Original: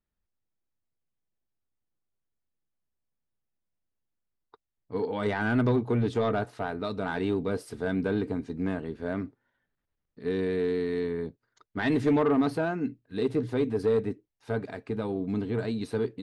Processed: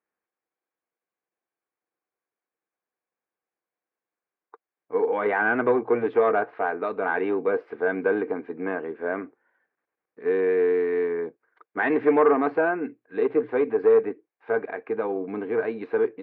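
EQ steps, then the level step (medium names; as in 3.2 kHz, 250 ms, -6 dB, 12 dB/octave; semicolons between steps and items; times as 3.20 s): cabinet simulation 310–2500 Hz, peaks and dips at 340 Hz +6 dB, 480 Hz +9 dB, 760 Hz +8 dB, 1.1 kHz +8 dB, 1.6 kHz +8 dB, 2.3 kHz +7 dB; 0.0 dB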